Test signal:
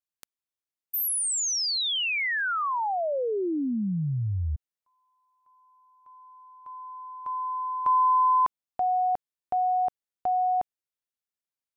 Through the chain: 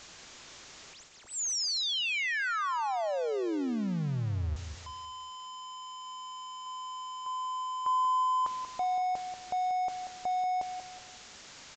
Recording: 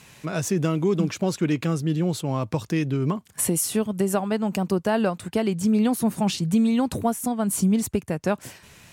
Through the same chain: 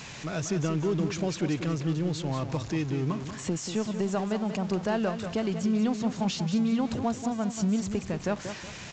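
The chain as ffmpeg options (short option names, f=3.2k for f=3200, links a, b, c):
-af "aeval=exprs='val(0)+0.5*0.0316*sgn(val(0))':c=same,aecho=1:1:186|372|558|744:0.355|0.124|0.0435|0.0152,aresample=16000,aresample=44100,volume=-7dB"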